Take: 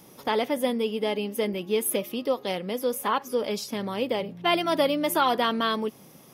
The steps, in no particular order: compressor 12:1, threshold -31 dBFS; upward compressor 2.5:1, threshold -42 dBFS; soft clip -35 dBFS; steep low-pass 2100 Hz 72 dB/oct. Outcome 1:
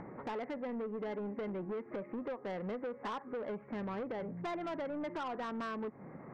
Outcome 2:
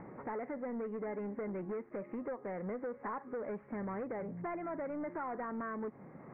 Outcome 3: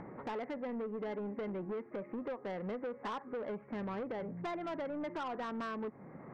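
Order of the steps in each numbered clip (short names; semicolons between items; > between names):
steep low-pass > compressor > soft clip > upward compressor; upward compressor > compressor > soft clip > steep low-pass; compressor > steep low-pass > upward compressor > soft clip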